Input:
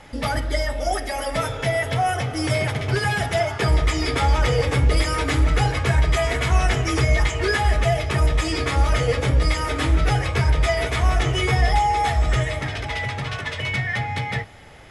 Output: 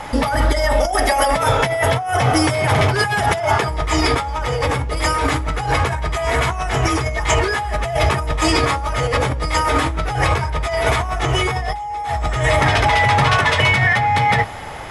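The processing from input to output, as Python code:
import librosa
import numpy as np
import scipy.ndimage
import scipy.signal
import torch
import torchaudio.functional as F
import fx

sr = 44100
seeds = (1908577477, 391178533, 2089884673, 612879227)

y = fx.peak_eq(x, sr, hz=950.0, db=9.5, octaves=1.1)
y = fx.over_compress(y, sr, threshold_db=-24.0, ratio=-1.0)
y = fx.high_shelf(y, sr, hz=9800.0, db=6.5)
y = y * 10.0 ** (5.5 / 20.0)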